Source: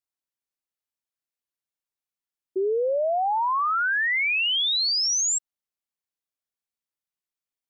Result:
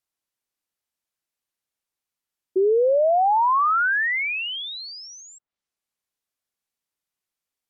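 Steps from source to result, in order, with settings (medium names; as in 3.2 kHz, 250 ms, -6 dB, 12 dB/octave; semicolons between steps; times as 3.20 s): low-pass that closes with the level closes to 1.6 kHz, closed at -25.5 dBFS; trim +5.5 dB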